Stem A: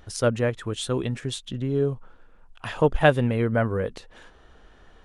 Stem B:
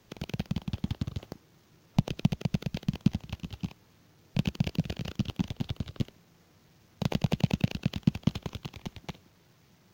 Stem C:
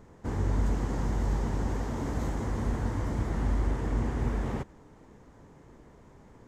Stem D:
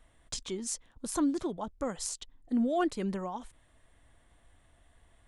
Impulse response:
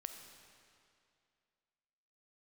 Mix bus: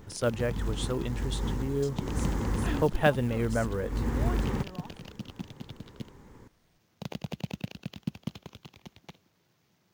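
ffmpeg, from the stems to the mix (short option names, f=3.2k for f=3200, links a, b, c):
-filter_complex "[0:a]volume=-6dB,asplit=2[a][b];[1:a]highpass=f=140:p=1,volume=-7dB[c];[2:a]equalizer=f=660:w=7.1:g=-15,volume=2dB[d];[3:a]adelay=1500,volume=-10dB[e];[b]apad=whole_len=285643[f];[d][f]sidechaincompress=threshold=-37dB:ratio=8:attack=16:release=348[g];[a][c][g][e]amix=inputs=4:normalize=0,acrusher=bits=7:mode=log:mix=0:aa=0.000001"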